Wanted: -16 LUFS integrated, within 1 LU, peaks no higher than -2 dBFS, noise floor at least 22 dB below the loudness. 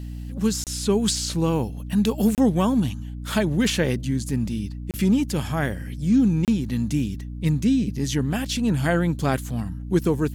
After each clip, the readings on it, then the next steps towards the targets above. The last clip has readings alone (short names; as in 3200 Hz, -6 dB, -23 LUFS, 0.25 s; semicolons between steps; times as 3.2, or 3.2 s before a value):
dropouts 4; longest dropout 28 ms; hum 60 Hz; harmonics up to 300 Hz; hum level -31 dBFS; loudness -23.5 LUFS; peak -8.5 dBFS; loudness target -16.0 LUFS
-> interpolate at 0.64/2.35/4.91/6.45, 28 ms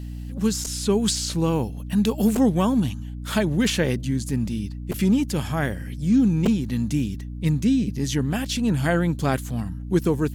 dropouts 0; hum 60 Hz; harmonics up to 300 Hz; hum level -31 dBFS
-> de-hum 60 Hz, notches 5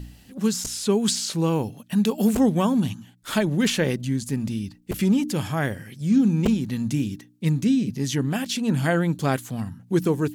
hum none; loudness -24.0 LUFS; peak -7.0 dBFS; loudness target -16.0 LUFS
-> gain +8 dB; limiter -2 dBFS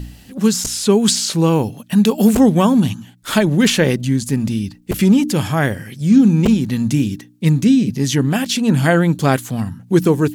loudness -16.0 LUFS; peak -2.0 dBFS; noise floor -45 dBFS